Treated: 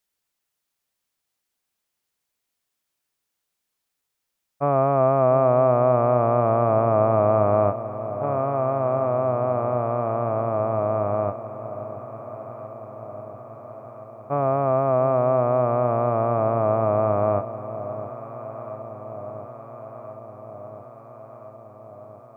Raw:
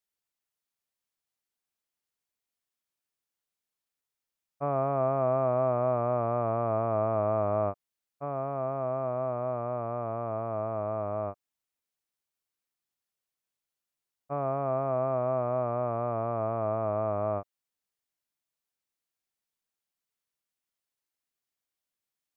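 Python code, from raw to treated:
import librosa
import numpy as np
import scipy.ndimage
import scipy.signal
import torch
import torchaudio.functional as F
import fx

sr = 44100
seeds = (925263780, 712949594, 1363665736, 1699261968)

y = fx.echo_alternate(x, sr, ms=686, hz=850.0, feedback_pct=80, wet_db=-12)
y = y * librosa.db_to_amplitude(8.5)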